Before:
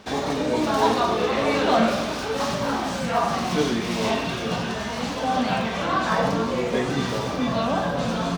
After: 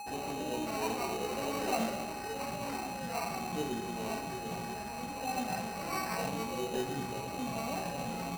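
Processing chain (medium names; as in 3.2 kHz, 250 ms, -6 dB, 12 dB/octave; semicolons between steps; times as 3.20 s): treble shelf 2.2 kHz -12 dB; whistle 11 kHz -28 dBFS; feedback comb 380 Hz, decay 0.53 s, mix 80%; sample-and-hold 13×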